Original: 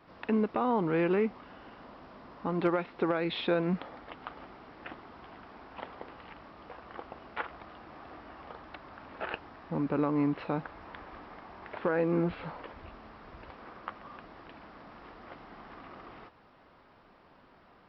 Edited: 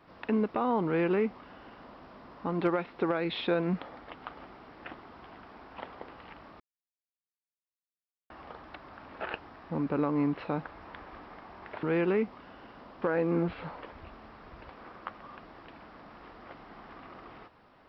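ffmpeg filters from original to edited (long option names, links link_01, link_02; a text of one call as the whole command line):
ffmpeg -i in.wav -filter_complex "[0:a]asplit=5[link_01][link_02][link_03][link_04][link_05];[link_01]atrim=end=6.6,asetpts=PTS-STARTPTS,afade=type=out:start_time=6.596:duration=0.004:curve=hsin[link_06];[link_02]atrim=start=6.6:end=8.3,asetpts=PTS-STARTPTS,volume=0[link_07];[link_03]atrim=start=8.3:end=11.832,asetpts=PTS-STARTPTS,afade=type=in:duration=0.004:curve=hsin[link_08];[link_04]atrim=start=0.858:end=2.052[link_09];[link_05]atrim=start=11.828[link_10];[link_06][link_07][link_08]concat=n=3:v=0:a=1[link_11];[link_11][link_09]acrossfade=duration=0.004:curve1=hsin:curve2=hsin[link_12];[link_12][link_10]acrossfade=duration=0.004:curve1=hsin:curve2=hsin" out.wav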